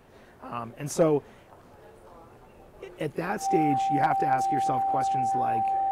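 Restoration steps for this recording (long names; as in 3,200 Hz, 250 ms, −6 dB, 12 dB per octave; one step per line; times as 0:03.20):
clipped peaks rebuilt −13 dBFS
notch filter 780 Hz, Q 30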